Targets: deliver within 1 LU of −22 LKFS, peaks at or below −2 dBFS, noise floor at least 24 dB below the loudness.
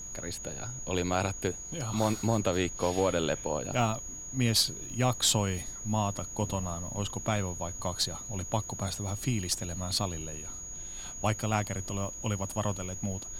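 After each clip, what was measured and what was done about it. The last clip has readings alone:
interfering tone 6,700 Hz; level of the tone −40 dBFS; background noise floor −42 dBFS; target noise floor −56 dBFS; integrated loudness −31.5 LKFS; sample peak −11.5 dBFS; target loudness −22.0 LKFS
→ notch filter 6,700 Hz, Q 30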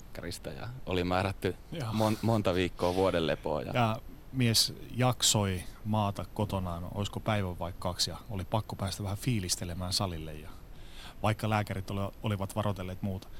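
interfering tone none found; background noise floor −49 dBFS; target noise floor −56 dBFS
→ noise reduction from a noise print 7 dB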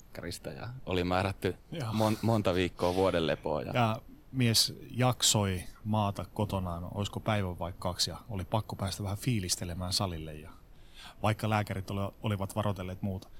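background noise floor −55 dBFS; target noise floor −56 dBFS
→ noise reduction from a noise print 6 dB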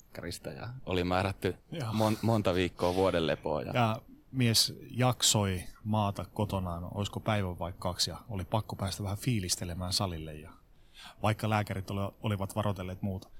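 background noise floor −58 dBFS; integrated loudness −31.5 LKFS; sample peak −12.0 dBFS; target loudness −22.0 LKFS
→ level +9.5 dB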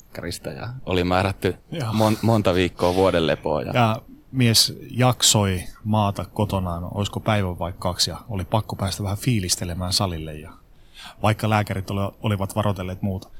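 integrated loudness −22.0 LKFS; sample peak −2.5 dBFS; background noise floor −49 dBFS

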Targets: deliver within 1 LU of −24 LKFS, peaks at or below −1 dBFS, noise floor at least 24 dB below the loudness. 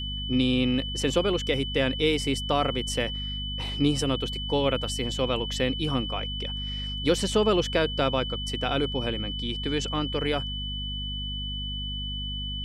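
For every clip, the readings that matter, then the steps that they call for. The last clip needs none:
mains hum 50 Hz; hum harmonics up to 250 Hz; level of the hum −32 dBFS; interfering tone 3,000 Hz; level of the tone −33 dBFS; integrated loudness −27.0 LKFS; sample peak −9.5 dBFS; target loudness −24.0 LKFS
→ mains-hum notches 50/100/150/200/250 Hz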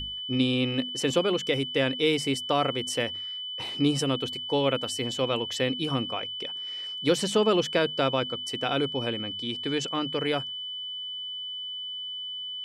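mains hum none found; interfering tone 3,000 Hz; level of the tone −33 dBFS
→ notch filter 3,000 Hz, Q 30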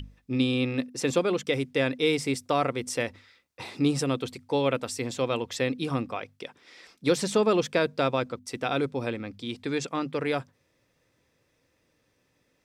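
interfering tone none found; integrated loudness −28.0 LKFS; sample peak −10.5 dBFS; target loudness −24.0 LKFS
→ level +4 dB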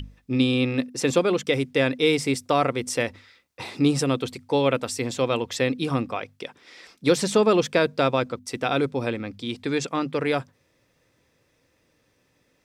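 integrated loudness −24.0 LKFS; sample peak −6.5 dBFS; background noise floor −67 dBFS

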